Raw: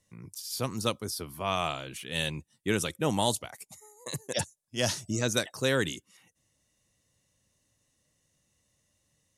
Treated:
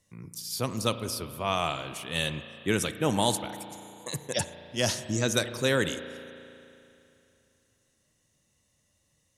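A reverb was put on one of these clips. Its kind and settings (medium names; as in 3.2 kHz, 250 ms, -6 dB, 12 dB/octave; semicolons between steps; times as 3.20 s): spring tank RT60 2.8 s, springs 35 ms, chirp 25 ms, DRR 10.5 dB; trim +1.5 dB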